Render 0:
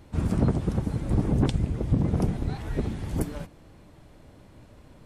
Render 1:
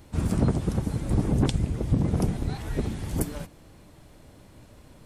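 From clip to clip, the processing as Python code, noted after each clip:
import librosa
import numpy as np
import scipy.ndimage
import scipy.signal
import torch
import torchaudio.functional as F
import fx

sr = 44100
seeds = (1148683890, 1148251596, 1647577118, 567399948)

y = fx.high_shelf(x, sr, hz=4700.0, db=8.5)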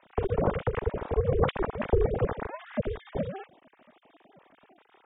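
y = fx.sine_speech(x, sr)
y = y * np.sin(2.0 * np.pi * 190.0 * np.arange(len(y)) / sr)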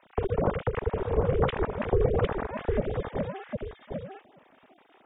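y = x + 10.0 ** (-4.5 / 20.0) * np.pad(x, (int(755 * sr / 1000.0), 0))[:len(x)]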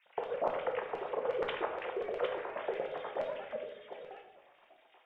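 y = fx.filter_lfo_highpass(x, sr, shape='square', hz=8.4, low_hz=600.0, high_hz=2300.0, q=1.5)
y = fx.room_shoebox(y, sr, seeds[0], volume_m3=240.0, walls='mixed', distance_m=0.88)
y = y * librosa.db_to_amplitude(-6.0)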